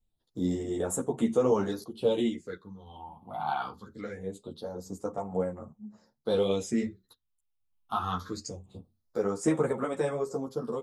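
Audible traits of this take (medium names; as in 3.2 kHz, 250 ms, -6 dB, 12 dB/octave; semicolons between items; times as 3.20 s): phasing stages 6, 0.23 Hz, lowest notch 460–4500 Hz; random-step tremolo; a shimmering, thickened sound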